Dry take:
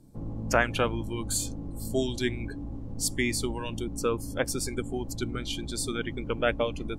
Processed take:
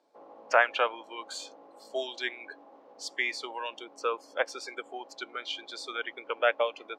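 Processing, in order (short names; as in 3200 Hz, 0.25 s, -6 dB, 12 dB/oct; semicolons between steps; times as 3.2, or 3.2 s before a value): HPF 560 Hz 24 dB/oct; air absorption 200 m; gain +4 dB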